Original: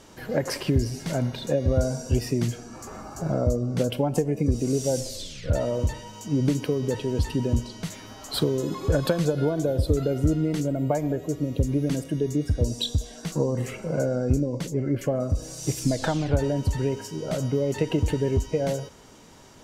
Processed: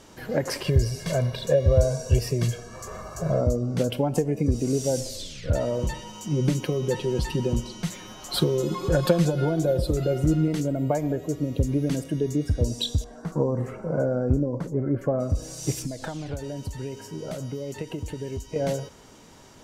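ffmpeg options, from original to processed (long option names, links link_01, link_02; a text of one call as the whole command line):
ffmpeg -i in.wav -filter_complex "[0:a]asettb=1/sr,asplit=3[link_01][link_02][link_03];[link_01]atrim=end=0.644[link_04];[link_02]atrim=start=0.64:end=3.41,asetpts=PTS-STARTPTS,afade=type=in:duration=0.004:curve=qsin,afade=type=out:start_time=2.766:duration=0.004:curve=qsin,aecho=1:1:1.8:0.76,atrim=end_sample=122157[link_05];[link_03]atrim=start=3.406[link_06];[link_04][link_05]acrossfade=duration=0.004:curve1=hsin:curve2=qsin[link_07];[link_07][link_06]acrossfade=duration=0.004:curve1=qsin:curve2=hsin,asettb=1/sr,asplit=3[link_08][link_09][link_10];[link_08]atrim=end=5.824[link_11];[link_09]atrim=start=5.82:end=10.48,asetpts=PTS-STARTPTS,afade=type=in:duration=0.004:curve=qsin,afade=type=out:start_time=4.656:duration=0.004:curve=qsin,aecho=1:1:5.6:0.65,atrim=end_sample=205506[link_12];[link_10]atrim=start=10.476[link_13];[link_11][link_12]acrossfade=duration=0.004:curve1=hsin:curve2=qsin[link_14];[link_14][link_13]acrossfade=duration=0.004:curve1=qsin:curve2=hsin,asettb=1/sr,asplit=3[link_15][link_16][link_17];[link_15]atrim=end=13.044[link_18];[link_16]atrim=start=13.04:end=15.19,asetpts=PTS-STARTPTS,afade=type=in:duration=0.004:curve=qsin,afade=type=out:start_time=2.146:duration=0.004:curve=qsin,highshelf=frequency=1900:width_type=q:width=1.5:gain=-13.5[link_19];[link_17]atrim=start=15.186[link_20];[link_18][link_19]acrossfade=duration=0.004:curve1=hsin:curve2=qsin[link_21];[link_21][link_20]acrossfade=duration=0.004:curve1=qsin:curve2=hsin,asettb=1/sr,asplit=3[link_22][link_23][link_24];[link_22]atrim=end=15.824[link_25];[link_23]atrim=start=15.82:end=18.56,asetpts=PTS-STARTPTS,afade=type=in:duration=0.004:curve=qsin,afade=type=out:start_time=2.736:duration=0.004:curve=qsin,acrossover=split=2700|7800[link_26][link_27][link_28];[link_26]acompressor=threshold=-31dB:ratio=4[link_29];[link_27]acompressor=threshold=-50dB:ratio=4[link_30];[link_28]acompressor=threshold=-51dB:ratio=4[link_31];[link_29][link_30][link_31]amix=inputs=3:normalize=0[link_32];[link_24]atrim=start=18.556[link_33];[link_25][link_32]acrossfade=duration=0.004:curve1=hsin:curve2=qsin[link_34];[link_34][link_33]acrossfade=duration=0.004:curve1=qsin:curve2=hsin" out.wav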